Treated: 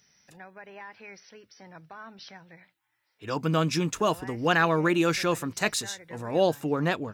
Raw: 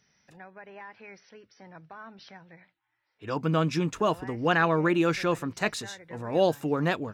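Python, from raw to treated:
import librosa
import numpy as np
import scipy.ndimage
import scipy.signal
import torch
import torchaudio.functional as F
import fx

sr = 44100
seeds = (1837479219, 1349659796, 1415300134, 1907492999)

y = fx.high_shelf(x, sr, hz=4600.0, db=fx.steps((0.0, 11.5), (6.31, 2.5)))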